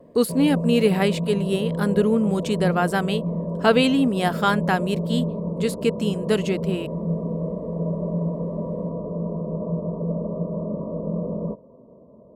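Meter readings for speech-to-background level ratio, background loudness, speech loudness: 5.5 dB, −28.0 LKFS, −22.5 LKFS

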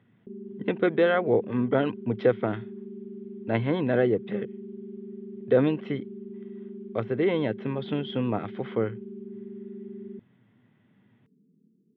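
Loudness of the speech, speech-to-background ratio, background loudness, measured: −27.0 LKFS, 14.0 dB, −41.0 LKFS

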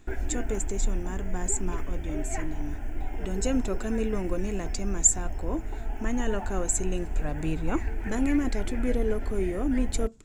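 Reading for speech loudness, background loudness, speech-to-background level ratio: −30.5 LKFS, −36.0 LKFS, 5.5 dB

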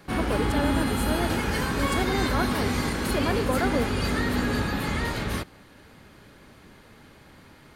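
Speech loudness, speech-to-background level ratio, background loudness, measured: −31.5 LKFS, −5.0 dB, −26.5 LKFS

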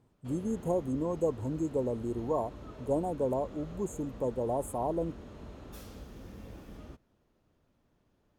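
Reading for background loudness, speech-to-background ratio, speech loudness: −48.0 LKFS, 14.5 dB, −33.5 LKFS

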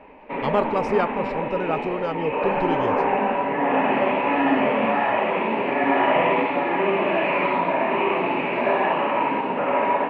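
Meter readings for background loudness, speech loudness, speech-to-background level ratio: −22.0 LKFS, −27.0 LKFS, −5.0 dB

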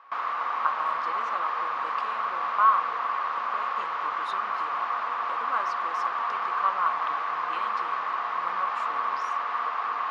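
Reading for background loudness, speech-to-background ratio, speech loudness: −28.5 LKFS, −3.5 dB, −32.0 LKFS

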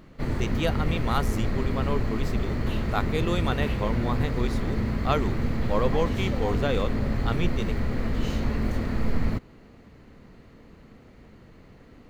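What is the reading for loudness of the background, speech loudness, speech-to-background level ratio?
−29.0 LKFS, −31.0 LKFS, −2.0 dB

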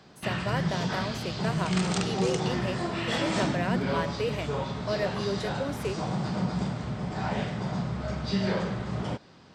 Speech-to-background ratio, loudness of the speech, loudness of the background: −4.0 dB, −34.5 LKFS, −30.5 LKFS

